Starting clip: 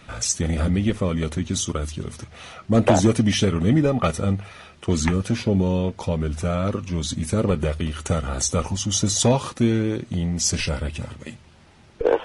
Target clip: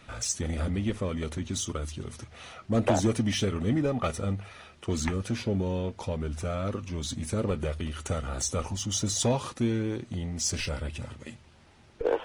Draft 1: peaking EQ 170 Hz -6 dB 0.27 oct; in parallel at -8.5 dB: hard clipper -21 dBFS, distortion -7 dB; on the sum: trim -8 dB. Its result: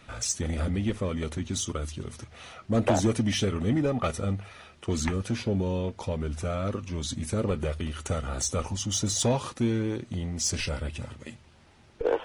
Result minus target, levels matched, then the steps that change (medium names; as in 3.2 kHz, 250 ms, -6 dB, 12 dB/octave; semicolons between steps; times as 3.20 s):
hard clipper: distortion -5 dB
change: hard clipper -30.5 dBFS, distortion -2 dB